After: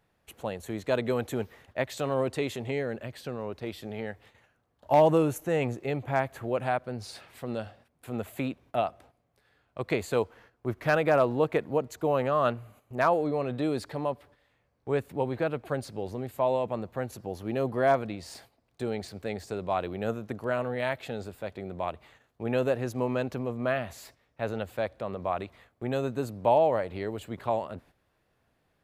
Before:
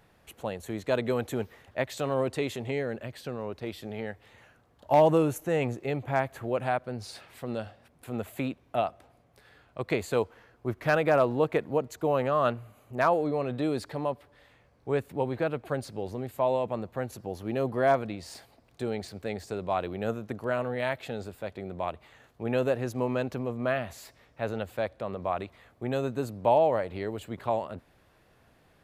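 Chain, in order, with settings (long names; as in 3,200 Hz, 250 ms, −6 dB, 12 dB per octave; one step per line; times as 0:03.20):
noise gate −54 dBFS, range −10 dB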